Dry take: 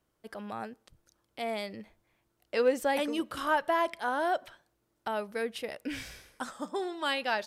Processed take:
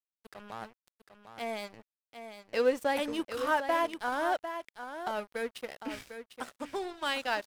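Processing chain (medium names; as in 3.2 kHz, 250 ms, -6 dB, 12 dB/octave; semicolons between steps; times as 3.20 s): expander -58 dBFS; crossover distortion -42.5 dBFS; on a send: delay 750 ms -9.5 dB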